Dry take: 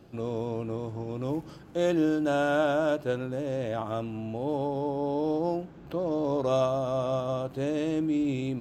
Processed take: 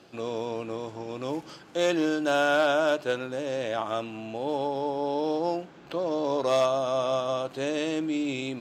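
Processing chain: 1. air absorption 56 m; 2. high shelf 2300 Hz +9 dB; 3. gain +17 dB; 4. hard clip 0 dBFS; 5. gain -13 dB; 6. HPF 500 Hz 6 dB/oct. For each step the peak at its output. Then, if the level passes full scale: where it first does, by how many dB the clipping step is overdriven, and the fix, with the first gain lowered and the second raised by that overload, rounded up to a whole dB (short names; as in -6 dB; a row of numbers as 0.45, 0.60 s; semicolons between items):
-14.0, -12.5, +4.5, 0.0, -13.0, -11.0 dBFS; step 3, 4.5 dB; step 3 +12 dB, step 5 -8 dB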